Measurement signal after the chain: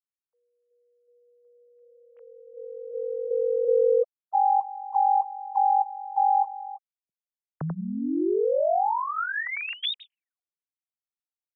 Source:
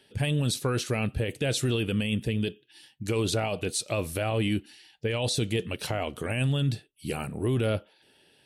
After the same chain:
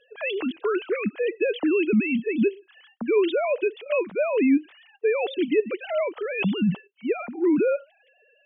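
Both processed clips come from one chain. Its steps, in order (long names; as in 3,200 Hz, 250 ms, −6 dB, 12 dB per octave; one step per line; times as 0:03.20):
three sine waves on the formant tracks
in parallel at −2 dB: brickwall limiter −21.5 dBFS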